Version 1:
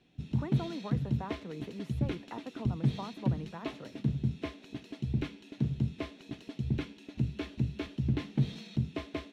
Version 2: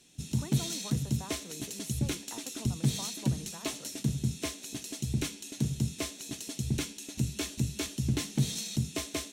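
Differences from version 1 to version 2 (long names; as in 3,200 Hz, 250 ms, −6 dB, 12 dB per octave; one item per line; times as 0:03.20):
speech −6.0 dB
master: remove high-frequency loss of the air 380 metres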